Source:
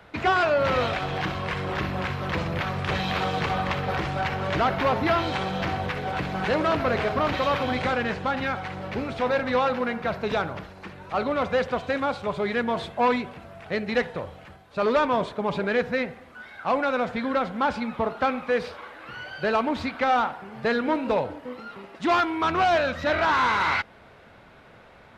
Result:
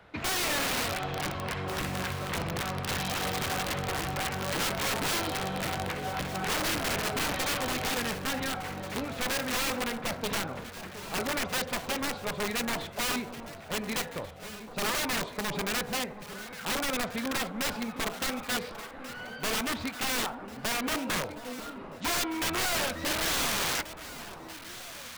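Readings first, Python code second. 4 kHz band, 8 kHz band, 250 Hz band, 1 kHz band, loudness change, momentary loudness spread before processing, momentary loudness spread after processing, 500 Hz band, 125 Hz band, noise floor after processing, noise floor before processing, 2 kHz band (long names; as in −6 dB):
+2.5 dB, can't be measured, −6.0 dB, −9.0 dB, −5.5 dB, 11 LU, 12 LU, −10.5 dB, −6.0 dB, −44 dBFS, −51 dBFS, −4.0 dB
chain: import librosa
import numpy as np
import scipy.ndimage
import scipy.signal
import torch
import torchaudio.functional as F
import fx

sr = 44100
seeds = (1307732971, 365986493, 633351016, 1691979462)

y = (np.mod(10.0 ** (20.0 / 20.0) * x + 1.0, 2.0) - 1.0) / 10.0 ** (20.0 / 20.0)
y = fx.echo_alternate(y, sr, ms=718, hz=1100.0, feedback_pct=69, wet_db=-11)
y = F.gain(torch.from_numpy(y), -5.0).numpy()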